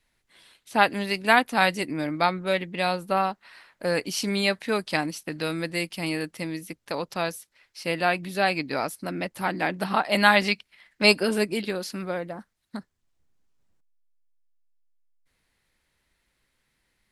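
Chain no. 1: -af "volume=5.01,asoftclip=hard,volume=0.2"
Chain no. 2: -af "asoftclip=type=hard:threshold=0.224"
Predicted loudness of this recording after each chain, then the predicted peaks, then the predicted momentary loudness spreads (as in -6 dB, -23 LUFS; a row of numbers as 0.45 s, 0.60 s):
-26.5 LUFS, -26.5 LUFS; -14.0 dBFS, -13.0 dBFS; 12 LU, 12 LU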